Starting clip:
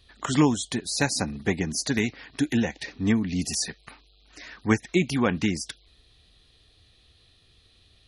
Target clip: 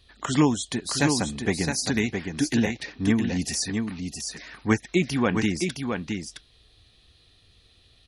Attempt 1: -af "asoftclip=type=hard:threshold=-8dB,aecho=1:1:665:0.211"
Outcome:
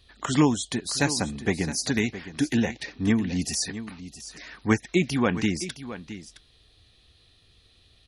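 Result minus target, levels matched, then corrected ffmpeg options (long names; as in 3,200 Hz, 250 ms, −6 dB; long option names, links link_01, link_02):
echo-to-direct −8 dB
-af "asoftclip=type=hard:threshold=-8dB,aecho=1:1:665:0.531"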